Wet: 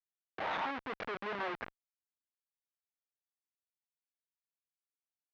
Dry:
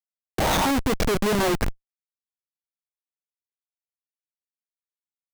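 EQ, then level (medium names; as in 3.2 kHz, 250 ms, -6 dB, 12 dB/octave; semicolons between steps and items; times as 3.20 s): band-pass filter 1.7 kHz, Q 0.76; distance through air 270 m; -8.0 dB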